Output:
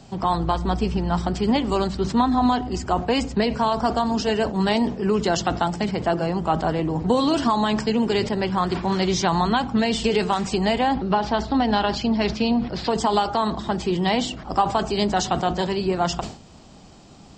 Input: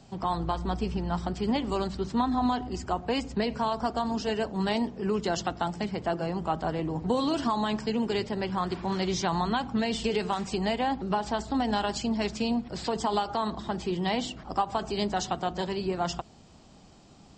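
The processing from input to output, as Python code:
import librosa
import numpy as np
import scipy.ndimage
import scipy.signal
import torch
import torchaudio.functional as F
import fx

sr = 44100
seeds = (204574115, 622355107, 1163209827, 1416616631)

y = fx.lowpass(x, sr, hz=5200.0, slope=24, at=(10.96, 12.9))
y = fx.sustainer(y, sr, db_per_s=120.0)
y = y * 10.0 ** (7.0 / 20.0)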